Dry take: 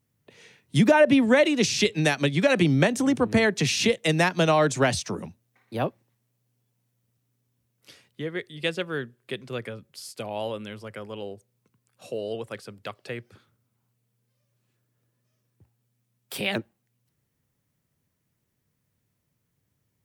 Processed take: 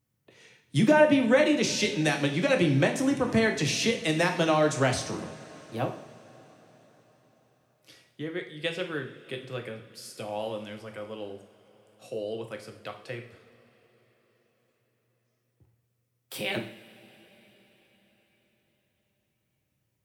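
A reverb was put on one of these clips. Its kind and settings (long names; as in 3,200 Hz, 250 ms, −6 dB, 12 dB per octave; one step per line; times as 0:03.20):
coupled-rooms reverb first 0.54 s, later 5 s, from −20 dB, DRR 3 dB
level −4.5 dB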